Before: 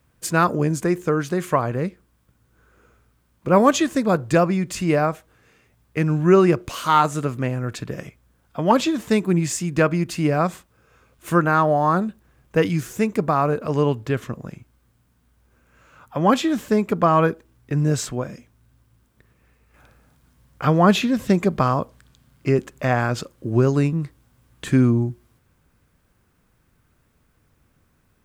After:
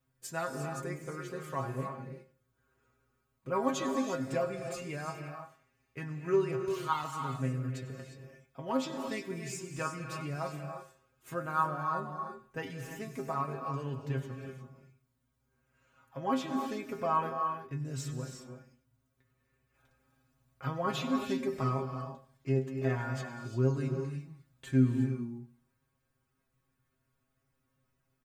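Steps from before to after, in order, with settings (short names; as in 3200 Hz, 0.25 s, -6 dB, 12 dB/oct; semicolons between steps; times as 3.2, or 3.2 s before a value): metallic resonator 130 Hz, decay 0.23 s, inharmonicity 0.002; feedback echo 97 ms, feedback 33%, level -18 dB; non-linear reverb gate 0.38 s rising, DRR 5 dB; gain -6 dB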